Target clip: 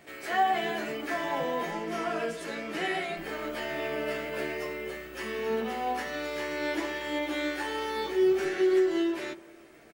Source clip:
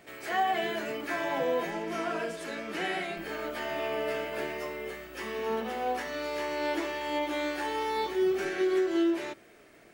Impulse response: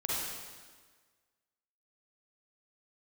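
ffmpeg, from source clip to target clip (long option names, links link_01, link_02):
-filter_complex "[0:a]asplit=2[link_01][link_02];[link_02]adelay=13,volume=-6dB[link_03];[link_01][link_03]amix=inputs=2:normalize=0,asplit=2[link_04][link_05];[1:a]atrim=start_sample=2205,lowpass=1100,adelay=56[link_06];[link_05][link_06]afir=irnorm=-1:irlink=0,volume=-21.5dB[link_07];[link_04][link_07]amix=inputs=2:normalize=0"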